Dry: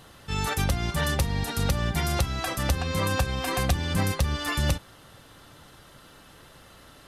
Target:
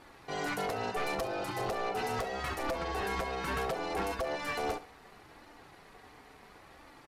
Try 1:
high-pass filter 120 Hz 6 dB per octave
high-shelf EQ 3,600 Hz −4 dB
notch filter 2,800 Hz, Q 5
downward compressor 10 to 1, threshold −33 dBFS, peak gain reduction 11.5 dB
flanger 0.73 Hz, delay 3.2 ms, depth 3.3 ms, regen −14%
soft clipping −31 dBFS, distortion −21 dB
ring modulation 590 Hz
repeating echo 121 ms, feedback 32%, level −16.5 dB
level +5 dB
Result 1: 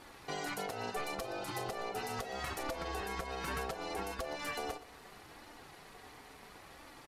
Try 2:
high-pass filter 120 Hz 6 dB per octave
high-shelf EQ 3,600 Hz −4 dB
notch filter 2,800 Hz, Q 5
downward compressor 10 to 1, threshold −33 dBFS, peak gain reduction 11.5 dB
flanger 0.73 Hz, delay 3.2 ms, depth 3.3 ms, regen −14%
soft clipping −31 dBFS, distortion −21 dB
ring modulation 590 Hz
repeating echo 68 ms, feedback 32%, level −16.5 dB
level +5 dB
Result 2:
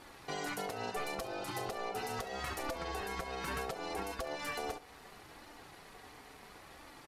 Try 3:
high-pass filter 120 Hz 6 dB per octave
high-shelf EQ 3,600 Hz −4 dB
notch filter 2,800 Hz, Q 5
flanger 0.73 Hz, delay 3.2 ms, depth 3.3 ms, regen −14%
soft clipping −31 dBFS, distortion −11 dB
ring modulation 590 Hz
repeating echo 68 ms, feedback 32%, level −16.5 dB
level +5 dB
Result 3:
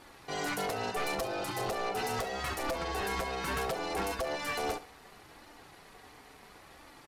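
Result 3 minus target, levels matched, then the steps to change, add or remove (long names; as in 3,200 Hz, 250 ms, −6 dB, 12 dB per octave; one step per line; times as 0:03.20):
8,000 Hz band +4.5 dB
change: high-shelf EQ 3,600 Hz −11 dB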